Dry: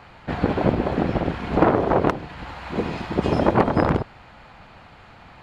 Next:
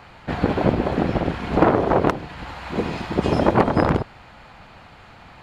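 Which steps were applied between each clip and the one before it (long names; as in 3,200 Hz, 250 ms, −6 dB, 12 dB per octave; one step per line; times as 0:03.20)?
high-shelf EQ 5,600 Hz +5 dB
level +1 dB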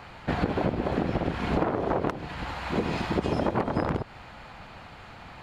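downward compressor 12 to 1, threshold −22 dBFS, peak gain reduction 12.5 dB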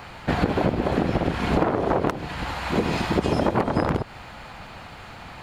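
high-shelf EQ 7,600 Hz +9 dB
level +4.5 dB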